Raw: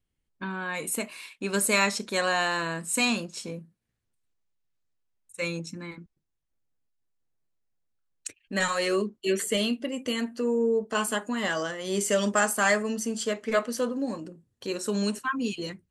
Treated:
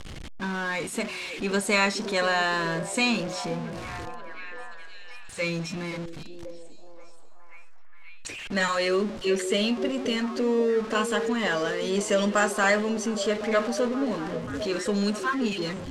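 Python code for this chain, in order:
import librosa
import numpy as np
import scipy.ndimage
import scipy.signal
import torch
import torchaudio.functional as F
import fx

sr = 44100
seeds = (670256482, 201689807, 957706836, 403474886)

y = x + 0.5 * 10.0 ** (-31.5 / 20.0) * np.sign(x)
y = scipy.signal.sosfilt(scipy.signal.butter(2, 5900.0, 'lowpass', fs=sr, output='sos'), y)
y = fx.echo_stepped(y, sr, ms=530, hz=360.0, octaves=0.7, feedback_pct=70, wet_db=-6.5)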